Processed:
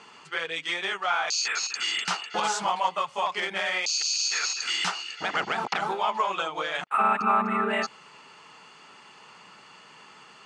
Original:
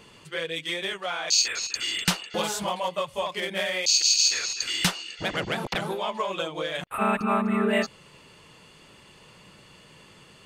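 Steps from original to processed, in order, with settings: peak limiter -18 dBFS, peak gain reduction 9 dB; cabinet simulation 300–7300 Hz, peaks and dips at 330 Hz -6 dB, 540 Hz -9 dB, 830 Hz +6 dB, 1.3 kHz +7 dB, 3.6 kHz -5 dB; trim +2.5 dB

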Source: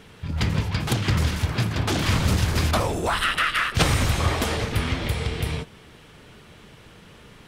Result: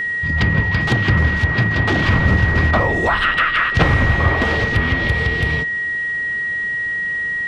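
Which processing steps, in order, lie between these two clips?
low-pass that closes with the level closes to 2.2 kHz, closed at -18.5 dBFS; whistle 1.9 kHz -25 dBFS; trim +6 dB

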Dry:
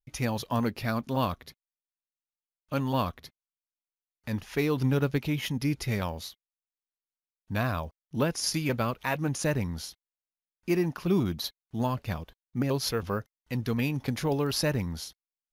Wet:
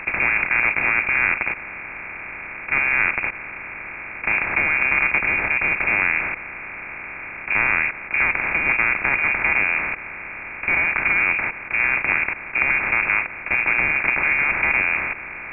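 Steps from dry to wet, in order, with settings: spectral levelling over time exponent 0.2; frequency inversion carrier 2.6 kHz

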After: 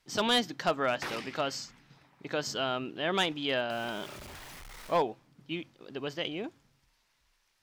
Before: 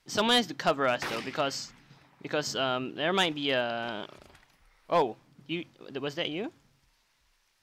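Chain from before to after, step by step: 3.70–4.97 s: jump at every zero crossing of -39.5 dBFS; trim -2.5 dB

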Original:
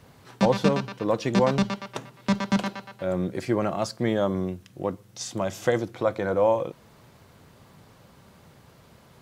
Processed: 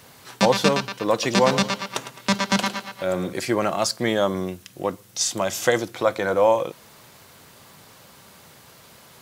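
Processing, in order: tilt EQ +2.5 dB/octave; 1.12–3.33 s: modulated delay 107 ms, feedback 38%, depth 52 cents, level -12 dB; trim +5.5 dB

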